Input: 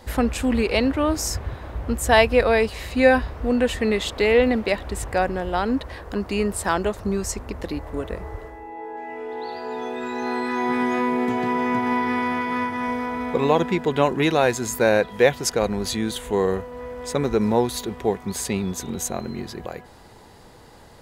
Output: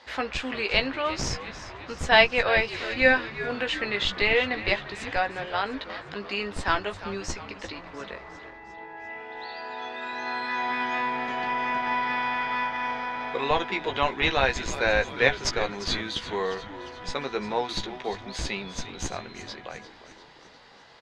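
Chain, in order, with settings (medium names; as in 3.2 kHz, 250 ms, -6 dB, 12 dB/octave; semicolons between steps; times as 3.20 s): frequency weighting ITU-R 468; in parallel at -4 dB: Schmitt trigger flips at -9.5 dBFS; on the sum: distance through air 250 m; doubling 15 ms -7 dB; frequency-shifting echo 351 ms, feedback 58%, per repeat -110 Hz, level -14 dB; trim -2.5 dB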